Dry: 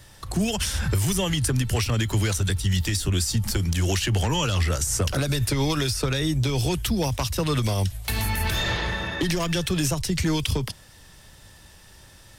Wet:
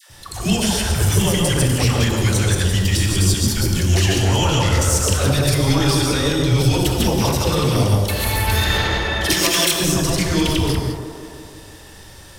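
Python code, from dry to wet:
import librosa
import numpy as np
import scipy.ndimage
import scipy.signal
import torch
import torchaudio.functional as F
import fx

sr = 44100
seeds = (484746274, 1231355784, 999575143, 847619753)

p1 = fx.reverse_delay(x, sr, ms=102, wet_db=0.0)
p2 = fx.tilt_eq(p1, sr, slope=3.5, at=(9.24, 9.73))
p3 = 10.0 ** (-21.0 / 20.0) * np.tanh(p2 / 10.0 ** (-21.0 / 20.0))
p4 = p2 + (p3 * librosa.db_to_amplitude(-3.0))
p5 = fx.dispersion(p4, sr, late='lows', ms=99.0, hz=750.0)
p6 = p5 + fx.echo_wet_bandpass(p5, sr, ms=167, feedback_pct=67, hz=570.0, wet_db=-6.0, dry=0)
p7 = fx.rev_gated(p6, sr, seeds[0], gate_ms=230, shape='flat', drr_db=4.0)
y = p7 * librosa.db_to_amplitude(-1.0)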